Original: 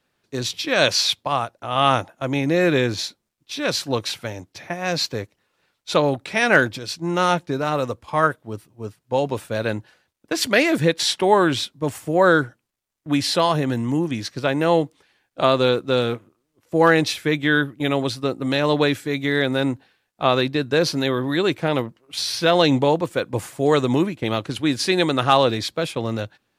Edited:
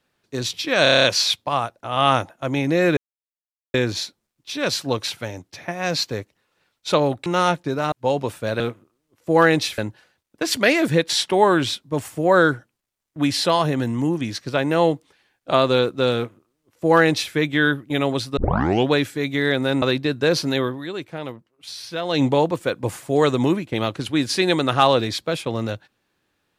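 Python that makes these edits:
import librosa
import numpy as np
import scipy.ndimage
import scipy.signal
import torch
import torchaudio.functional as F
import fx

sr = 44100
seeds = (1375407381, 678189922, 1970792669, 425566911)

y = fx.edit(x, sr, fx.stutter(start_s=0.83, slice_s=0.03, count=8),
    fx.insert_silence(at_s=2.76, length_s=0.77),
    fx.cut(start_s=6.28, length_s=0.81),
    fx.cut(start_s=7.75, length_s=1.25),
    fx.duplicate(start_s=16.05, length_s=1.18, to_s=9.68),
    fx.tape_start(start_s=18.27, length_s=0.53),
    fx.cut(start_s=19.72, length_s=0.6),
    fx.fade_down_up(start_s=21.16, length_s=1.55, db=-10.0, fade_s=0.16, curve='qua'), tone=tone)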